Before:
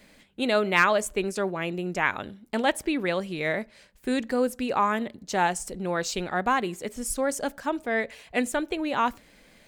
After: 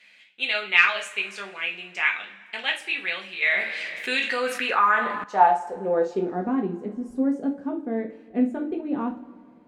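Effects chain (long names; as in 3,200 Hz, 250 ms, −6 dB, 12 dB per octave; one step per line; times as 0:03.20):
band-pass filter sweep 2,600 Hz → 260 Hz, 0:04.34–0:06.49
coupled-rooms reverb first 0.3 s, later 2.2 s, from −22 dB, DRR 0 dB
0:03.42–0:05.24: envelope flattener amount 50%
level +6 dB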